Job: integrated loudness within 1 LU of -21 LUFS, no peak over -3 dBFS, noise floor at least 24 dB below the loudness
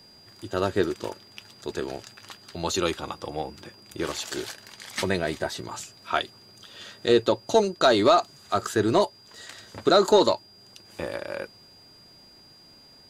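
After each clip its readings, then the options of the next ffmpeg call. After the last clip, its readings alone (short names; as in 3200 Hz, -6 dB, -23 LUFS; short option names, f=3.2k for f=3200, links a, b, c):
steady tone 4800 Hz; tone level -51 dBFS; loudness -25.5 LUFS; peak -8.0 dBFS; loudness target -21.0 LUFS
-> -af "bandreject=f=4.8k:w=30"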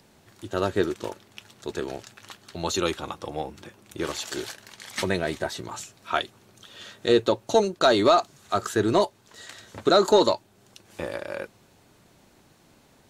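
steady tone none; loudness -25.5 LUFS; peak -8.0 dBFS; loudness target -21.0 LUFS
-> -af "volume=4.5dB"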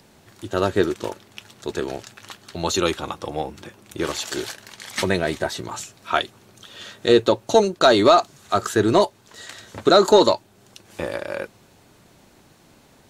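loudness -21.0 LUFS; peak -3.5 dBFS; noise floor -54 dBFS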